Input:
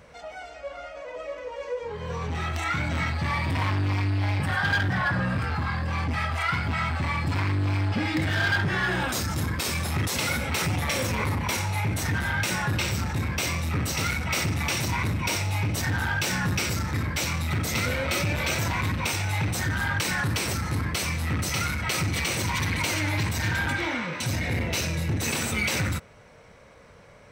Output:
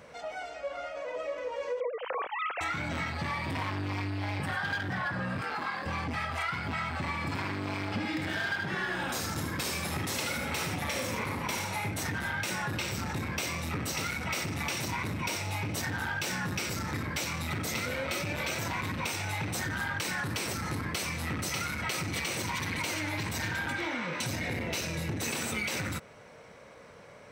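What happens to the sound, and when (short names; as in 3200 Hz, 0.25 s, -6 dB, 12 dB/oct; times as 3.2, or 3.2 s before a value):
1.8–2.61 sine-wave speech
5.41–5.86 HPF 330 Hz
7–11.91 echo 77 ms -5 dB
whole clip: HPF 370 Hz 6 dB/oct; low shelf 470 Hz +6.5 dB; compressor, threshold -30 dBFS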